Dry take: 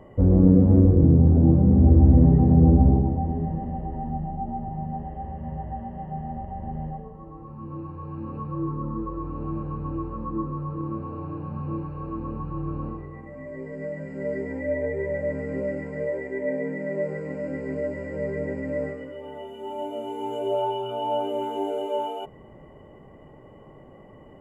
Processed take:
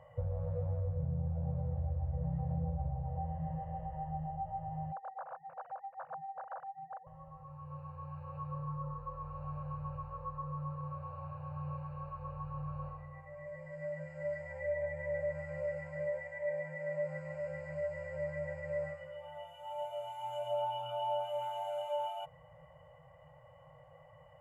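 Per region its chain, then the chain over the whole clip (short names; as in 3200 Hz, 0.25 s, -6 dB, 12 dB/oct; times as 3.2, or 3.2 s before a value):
4.92–7.07 sine-wave speech + compressor 4:1, threshold -34 dBFS
whole clip: FFT band-reject 170–480 Hz; compressor 4:1, threshold -24 dBFS; HPF 100 Hz 6 dB/oct; gain -6.5 dB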